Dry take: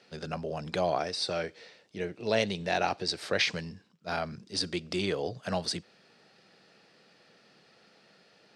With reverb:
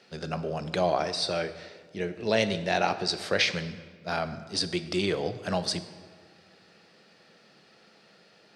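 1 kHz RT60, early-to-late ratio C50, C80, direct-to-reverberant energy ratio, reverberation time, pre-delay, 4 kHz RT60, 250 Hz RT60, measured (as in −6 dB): 1.5 s, 12.5 dB, 14.0 dB, 10.5 dB, 1.6 s, 4 ms, 1.1 s, 1.9 s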